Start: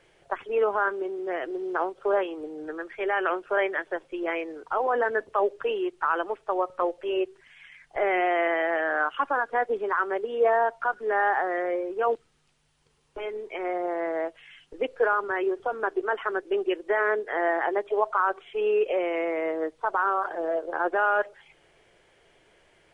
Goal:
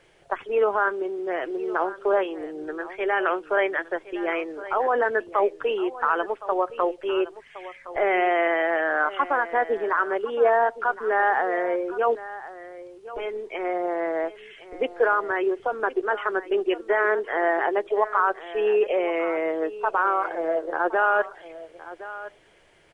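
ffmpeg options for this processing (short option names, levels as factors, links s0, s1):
-af "aecho=1:1:1065:0.168,volume=1.33"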